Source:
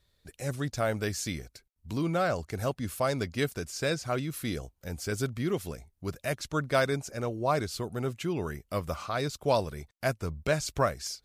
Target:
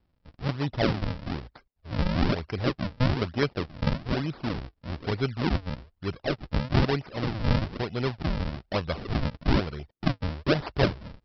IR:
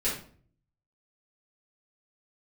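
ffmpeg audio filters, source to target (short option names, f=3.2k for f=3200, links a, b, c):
-af "dynaudnorm=f=130:g=5:m=3.5dB,aresample=11025,acrusher=samples=17:mix=1:aa=0.000001:lfo=1:lforange=27.2:lforate=1.1,aresample=44100"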